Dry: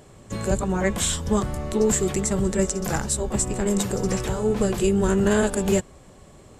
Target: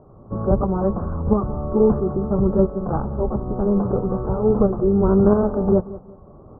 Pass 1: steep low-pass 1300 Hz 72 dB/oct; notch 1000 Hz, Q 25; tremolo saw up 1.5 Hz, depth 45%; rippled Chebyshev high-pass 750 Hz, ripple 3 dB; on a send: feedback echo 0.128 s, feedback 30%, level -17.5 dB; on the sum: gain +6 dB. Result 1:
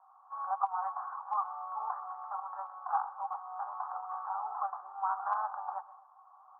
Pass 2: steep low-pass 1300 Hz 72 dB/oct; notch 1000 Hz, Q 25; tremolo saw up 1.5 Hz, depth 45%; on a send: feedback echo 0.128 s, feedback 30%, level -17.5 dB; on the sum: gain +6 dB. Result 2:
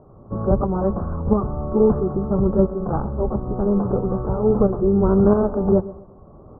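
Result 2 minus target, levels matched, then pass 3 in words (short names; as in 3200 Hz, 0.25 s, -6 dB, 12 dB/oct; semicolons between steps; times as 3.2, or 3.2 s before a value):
echo 54 ms early
steep low-pass 1300 Hz 72 dB/oct; notch 1000 Hz, Q 25; tremolo saw up 1.5 Hz, depth 45%; on a send: feedback echo 0.182 s, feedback 30%, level -17.5 dB; on the sum: gain +6 dB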